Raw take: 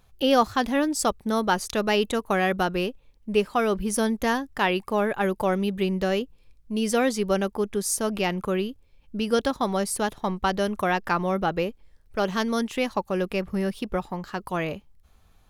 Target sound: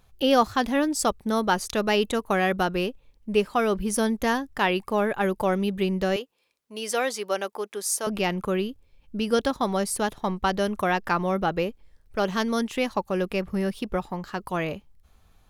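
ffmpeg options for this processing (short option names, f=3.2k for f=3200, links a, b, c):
-filter_complex "[0:a]asettb=1/sr,asplit=3[a][b][c];[a]atrim=end=6.164[d];[b]atrim=start=6.16:end=8.07,asetpts=PTS-STARTPTS,afade=t=in:d=0.004:c=qsin,afade=t=out:st=1.906:d=0.004:c=qsin,highpass=510[e];[c]atrim=start=8.066[f];[d][e]acrossfade=d=0.004:c1=hsin:c2=qsin[g];[g][f]acrossfade=d=0.004:c1=qsin:c2=hsin"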